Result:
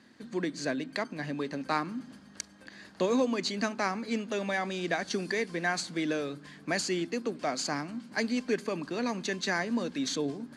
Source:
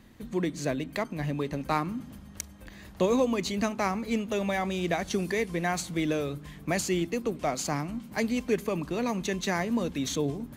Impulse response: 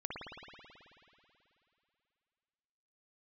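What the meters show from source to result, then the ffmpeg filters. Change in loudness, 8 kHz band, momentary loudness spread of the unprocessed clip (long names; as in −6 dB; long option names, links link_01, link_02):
−2.0 dB, −2.5 dB, 8 LU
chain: -af "highpass=200,equalizer=frequency=260:width_type=q:width=4:gain=4,equalizer=frequency=1600:width_type=q:width=4:gain=8,equalizer=frequency=4600:width_type=q:width=4:gain=9,lowpass=frequency=9600:width=0.5412,lowpass=frequency=9600:width=1.3066,volume=-3dB"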